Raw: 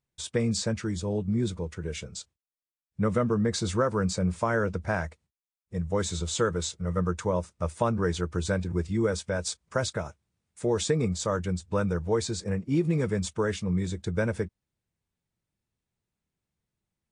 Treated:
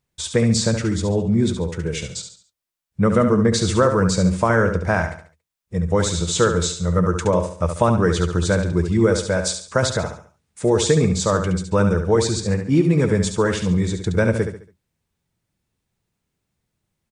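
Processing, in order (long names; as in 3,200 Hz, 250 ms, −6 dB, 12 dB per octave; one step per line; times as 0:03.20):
repeating echo 70 ms, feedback 37%, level −7.5 dB
level +8.5 dB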